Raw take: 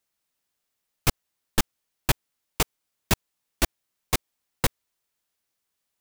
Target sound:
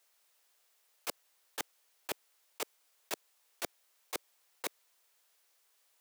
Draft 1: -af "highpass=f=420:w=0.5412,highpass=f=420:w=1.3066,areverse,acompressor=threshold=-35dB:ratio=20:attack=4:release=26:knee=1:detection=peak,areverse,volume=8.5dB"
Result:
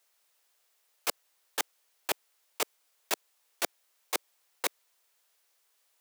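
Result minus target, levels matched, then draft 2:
compressor: peak gain reduction -8 dB
-af "highpass=f=420:w=0.5412,highpass=f=420:w=1.3066,areverse,acompressor=threshold=-43.5dB:ratio=20:attack=4:release=26:knee=1:detection=peak,areverse,volume=8.5dB"

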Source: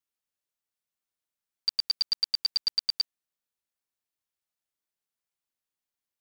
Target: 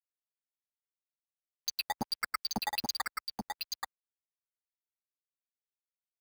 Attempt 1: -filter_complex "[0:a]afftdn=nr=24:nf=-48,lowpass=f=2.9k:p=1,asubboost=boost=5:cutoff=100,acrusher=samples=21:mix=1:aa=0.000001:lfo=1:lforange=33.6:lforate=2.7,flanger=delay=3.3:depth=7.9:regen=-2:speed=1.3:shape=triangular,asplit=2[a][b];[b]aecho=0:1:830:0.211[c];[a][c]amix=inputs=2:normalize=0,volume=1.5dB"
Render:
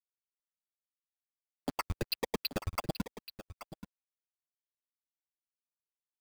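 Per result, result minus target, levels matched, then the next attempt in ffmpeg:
decimation with a swept rate: distortion +11 dB; echo-to-direct -9.5 dB
-filter_complex "[0:a]afftdn=nr=24:nf=-48,lowpass=f=2.9k:p=1,asubboost=boost=5:cutoff=100,acrusher=samples=9:mix=1:aa=0.000001:lfo=1:lforange=14.4:lforate=2.7,flanger=delay=3.3:depth=7.9:regen=-2:speed=1.3:shape=triangular,asplit=2[a][b];[b]aecho=0:1:830:0.211[c];[a][c]amix=inputs=2:normalize=0,volume=1.5dB"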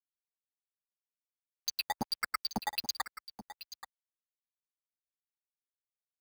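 echo-to-direct -9.5 dB
-filter_complex "[0:a]afftdn=nr=24:nf=-48,lowpass=f=2.9k:p=1,asubboost=boost=5:cutoff=100,acrusher=samples=9:mix=1:aa=0.000001:lfo=1:lforange=14.4:lforate=2.7,flanger=delay=3.3:depth=7.9:regen=-2:speed=1.3:shape=triangular,asplit=2[a][b];[b]aecho=0:1:830:0.631[c];[a][c]amix=inputs=2:normalize=0,volume=1.5dB"

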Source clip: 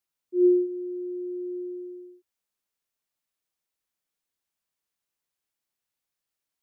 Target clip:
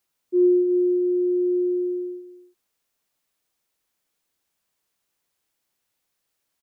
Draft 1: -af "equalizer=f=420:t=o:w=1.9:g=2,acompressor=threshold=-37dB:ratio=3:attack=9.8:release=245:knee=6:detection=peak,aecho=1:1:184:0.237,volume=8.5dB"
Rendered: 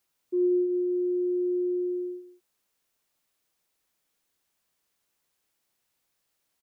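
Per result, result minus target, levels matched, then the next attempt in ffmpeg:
echo 0.14 s early; compressor: peak gain reduction +7 dB
-af "equalizer=f=420:t=o:w=1.9:g=2,acompressor=threshold=-37dB:ratio=3:attack=9.8:release=245:knee=6:detection=peak,aecho=1:1:324:0.237,volume=8.5dB"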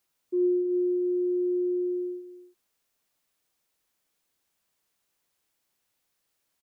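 compressor: peak gain reduction +7 dB
-af "equalizer=f=420:t=o:w=1.9:g=2,acompressor=threshold=-26.5dB:ratio=3:attack=9.8:release=245:knee=6:detection=peak,aecho=1:1:324:0.237,volume=8.5dB"

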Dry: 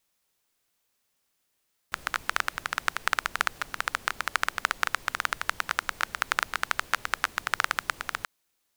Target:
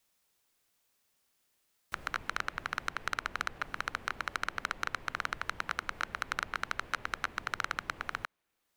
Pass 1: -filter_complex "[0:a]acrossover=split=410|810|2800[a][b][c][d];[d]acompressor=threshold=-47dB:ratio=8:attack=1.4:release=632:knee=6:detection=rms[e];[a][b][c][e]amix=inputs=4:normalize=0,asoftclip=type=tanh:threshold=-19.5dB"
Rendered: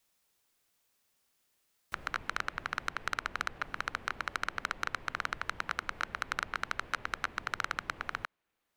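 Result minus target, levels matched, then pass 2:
compressor: peak gain reduction +5 dB
-filter_complex "[0:a]acrossover=split=410|810|2800[a][b][c][d];[d]acompressor=threshold=-41dB:ratio=8:attack=1.4:release=632:knee=6:detection=rms[e];[a][b][c][e]amix=inputs=4:normalize=0,asoftclip=type=tanh:threshold=-19.5dB"

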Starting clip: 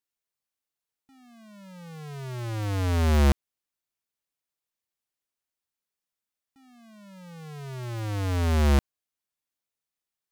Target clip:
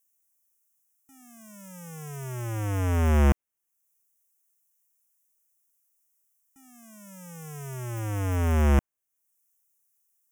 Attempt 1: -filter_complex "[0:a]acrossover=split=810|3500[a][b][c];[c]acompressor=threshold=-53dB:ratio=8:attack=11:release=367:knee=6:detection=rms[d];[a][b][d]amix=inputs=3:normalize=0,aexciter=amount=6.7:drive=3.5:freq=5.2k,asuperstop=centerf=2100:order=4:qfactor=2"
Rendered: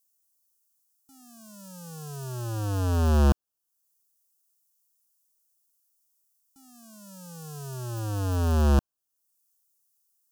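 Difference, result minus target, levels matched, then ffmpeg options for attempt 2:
2000 Hz band -4.5 dB
-filter_complex "[0:a]acrossover=split=810|3500[a][b][c];[c]acompressor=threshold=-53dB:ratio=8:attack=11:release=367:knee=6:detection=rms[d];[a][b][d]amix=inputs=3:normalize=0,aexciter=amount=6.7:drive=3.5:freq=5.2k,asuperstop=centerf=4300:order=4:qfactor=2"

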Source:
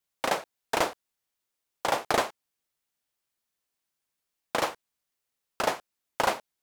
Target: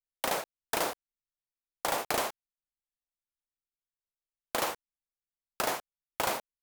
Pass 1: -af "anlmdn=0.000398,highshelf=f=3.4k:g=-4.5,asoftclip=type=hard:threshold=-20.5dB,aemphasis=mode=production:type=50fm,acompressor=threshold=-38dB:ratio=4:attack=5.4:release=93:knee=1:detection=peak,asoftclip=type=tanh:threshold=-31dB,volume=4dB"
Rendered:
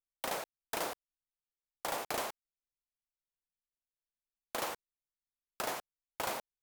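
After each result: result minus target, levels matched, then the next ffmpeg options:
soft clip: distortion +8 dB; compressor: peak gain reduction +5 dB
-af "anlmdn=0.000398,highshelf=f=3.4k:g=-4.5,asoftclip=type=hard:threshold=-20.5dB,aemphasis=mode=production:type=50fm,acompressor=threshold=-38dB:ratio=4:attack=5.4:release=93:knee=1:detection=peak,asoftclip=type=tanh:threshold=-20.5dB,volume=4dB"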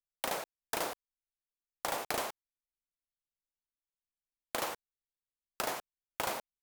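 compressor: peak gain reduction +5 dB
-af "anlmdn=0.000398,highshelf=f=3.4k:g=-4.5,asoftclip=type=hard:threshold=-20.5dB,aemphasis=mode=production:type=50fm,acompressor=threshold=-31dB:ratio=4:attack=5.4:release=93:knee=1:detection=peak,asoftclip=type=tanh:threshold=-20.5dB,volume=4dB"

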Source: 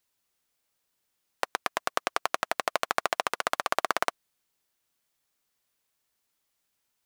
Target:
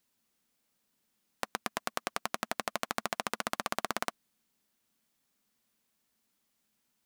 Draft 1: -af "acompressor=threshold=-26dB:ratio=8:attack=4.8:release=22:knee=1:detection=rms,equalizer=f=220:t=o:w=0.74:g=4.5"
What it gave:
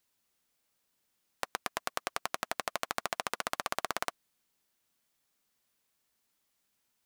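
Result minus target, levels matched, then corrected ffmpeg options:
250 Hz band -5.5 dB
-af "acompressor=threshold=-26dB:ratio=8:attack=4.8:release=22:knee=1:detection=rms,equalizer=f=220:t=o:w=0.74:g=13.5"

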